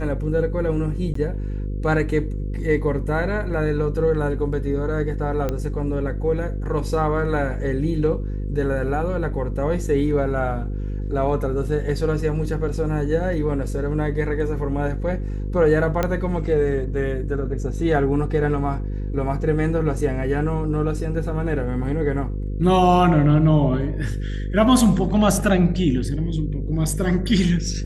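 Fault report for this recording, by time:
buzz 50 Hz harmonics 10 -26 dBFS
1.14–1.15 gap 14 ms
5.49 pop -12 dBFS
16.03 pop -8 dBFS

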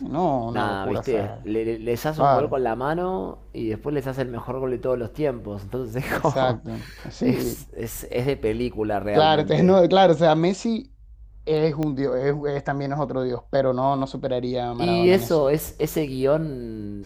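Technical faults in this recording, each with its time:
11.83 pop -15 dBFS

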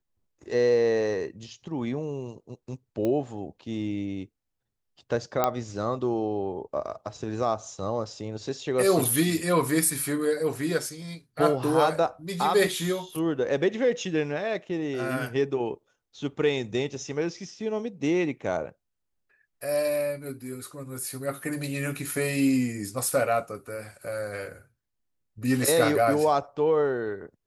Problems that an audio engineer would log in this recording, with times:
3.05 pop -17 dBFS
5.44 pop -9 dBFS

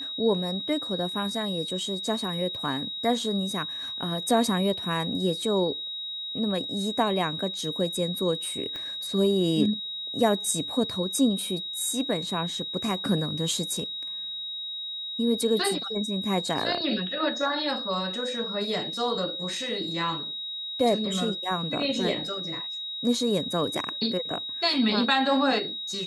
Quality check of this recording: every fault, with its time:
tone 3800 Hz -32 dBFS
8.76 pop -22 dBFS

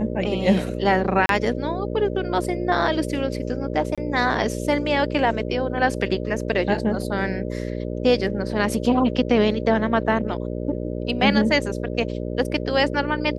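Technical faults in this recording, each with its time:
buzz 60 Hz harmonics 10 -28 dBFS
1.26–1.29 gap 32 ms
3.95–3.98 gap 26 ms

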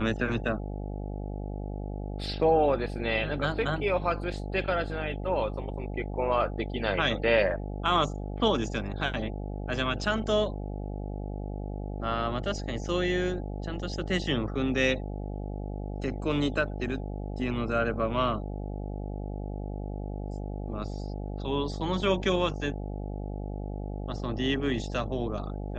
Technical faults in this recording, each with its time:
buzz 50 Hz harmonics 17 -35 dBFS

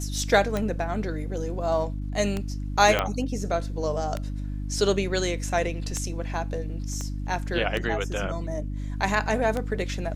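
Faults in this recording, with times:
hum 50 Hz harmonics 6 -31 dBFS
tick 33 1/3 rpm -14 dBFS
2.99 pop -9 dBFS
7.01 pop -21 dBFS

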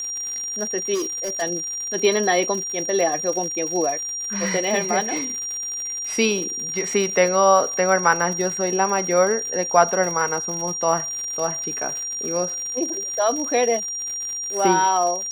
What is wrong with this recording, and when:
crackle 130/s -28 dBFS
tone 5700 Hz -26 dBFS
0.94–1.43 clipped -21.5 dBFS

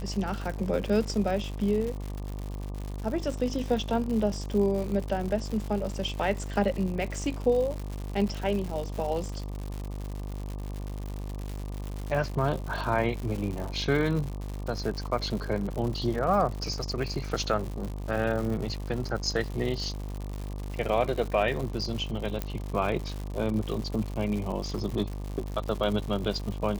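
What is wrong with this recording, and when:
buzz 50 Hz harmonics 24 -35 dBFS
crackle 160/s -33 dBFS
22.42 pop -15 dBFS

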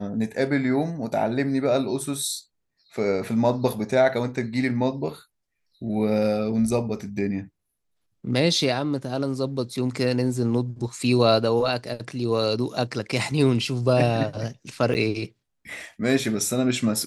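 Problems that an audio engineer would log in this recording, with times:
14.94–14.95 gap 9.7 ms

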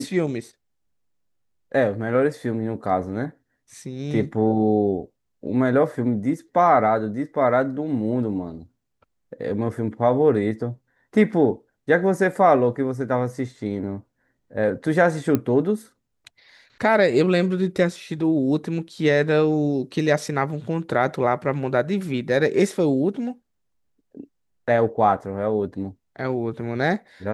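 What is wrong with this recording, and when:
15.35 pop -9 dBFS

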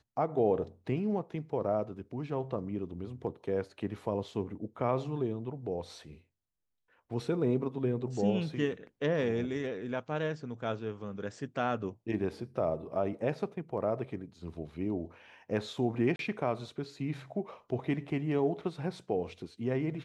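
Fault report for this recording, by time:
16.16–16.19 gap 32 ms

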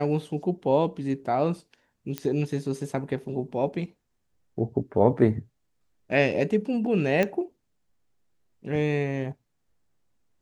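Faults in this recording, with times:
2.18 pop -14 dBFS
7.23 pop -12 dBFS

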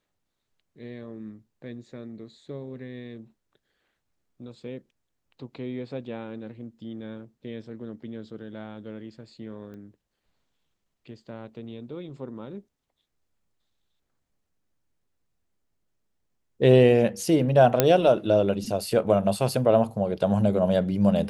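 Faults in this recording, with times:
9.74 pop -34 dBFS
17.8 pop -3 dBFS

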